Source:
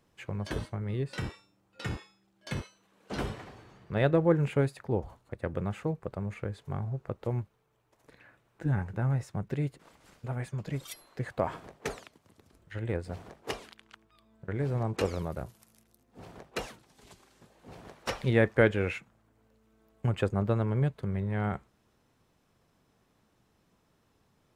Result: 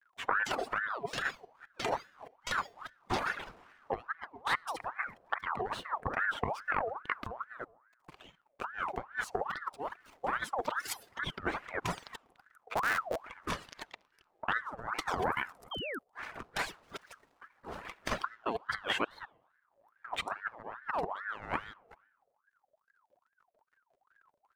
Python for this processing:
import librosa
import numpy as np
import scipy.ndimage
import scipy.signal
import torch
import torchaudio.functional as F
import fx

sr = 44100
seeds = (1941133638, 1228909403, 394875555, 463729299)

y = fx.reverse_delay(x, sr, ms=207, wet_db=-13.5)
y = fx.schmitt(y, sr, flips_db=-32.5, at=(12.74, 13.24))
y = fx.over_compress(y, sr, threshold_db=-34.0, ratio=-0.5)
y = fx.backlash(y, sr, play_db=-51.5)
y = fx.room_shoebox(y, sr, seeds[0], volume_m3=3400.0, walls='furnished', distance_m=0.65)
y = fx.dereverb_blind(y, sr, rt60_s=1.9)
y = fx.spec_paint(y, sr, seeds[1], shape='fall', start_s=15.71, length_s=0.28, low_hz=490.0, high_hz=2300.0, level_db=-39.0)
y = fx.ring_lfo(y, sr, carrier_hz=1100.0, swing_pct=50, hz=2.4)
y = F.gain(torch.from_numpy(y), 4.0).numpy()